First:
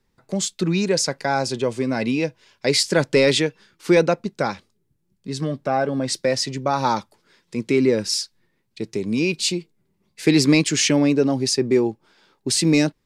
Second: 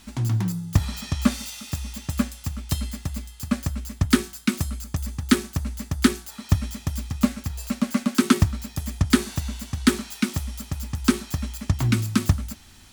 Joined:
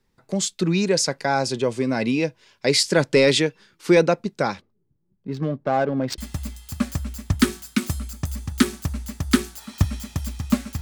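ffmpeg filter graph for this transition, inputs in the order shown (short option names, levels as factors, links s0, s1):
-filter_complex "[0:a]asplit=3[s0][s1][s2];[s0]afade=t=out:st=4.6:d=0.02[s3];[s1]adynamicsmooth=sensitivity=2:basefreq=1300,afade=t=in:st=4.6:d=0.02,afade=t=out:st=6.18:d=0.02[s4];[s2]afade=t=in:st=6.18:d=0.02[s5];[s3][s4][s5]amix=inputs=3:normalize=0,apad=whole_dur=10.81,atrim=end=10.81,atrim=end=6.182[s6];[1:a]atrim=start=2.888:end=7.52[s7];[s6][s7]acrossfade=d=0.004:c1=hsin:c2=hsin"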